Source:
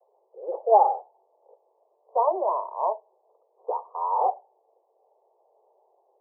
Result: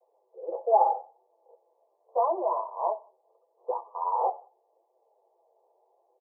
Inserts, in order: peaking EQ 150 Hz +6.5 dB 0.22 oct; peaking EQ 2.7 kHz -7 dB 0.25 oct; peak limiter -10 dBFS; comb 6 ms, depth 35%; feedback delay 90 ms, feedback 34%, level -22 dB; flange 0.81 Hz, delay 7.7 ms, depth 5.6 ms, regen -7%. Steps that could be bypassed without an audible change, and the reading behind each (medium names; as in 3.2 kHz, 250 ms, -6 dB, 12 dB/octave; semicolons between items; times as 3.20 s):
peaking EQ 150 Hz: input has nothing below 320 Hz; peaking EQ 2.7 kHz: input has nothing above 1.3 kHz